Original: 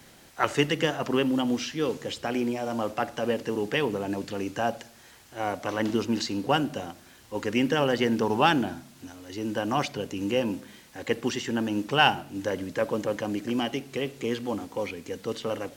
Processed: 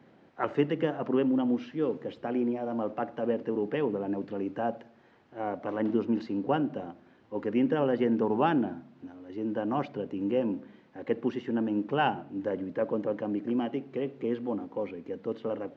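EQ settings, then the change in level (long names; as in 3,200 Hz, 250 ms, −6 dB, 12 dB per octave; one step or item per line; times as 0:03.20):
Bessel high-pass filter 280 Hz, order 2
head-to-tape spacing loss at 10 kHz 44 dB
low-shelf EQ 400 Hz +9.5 dB
−2.5 dB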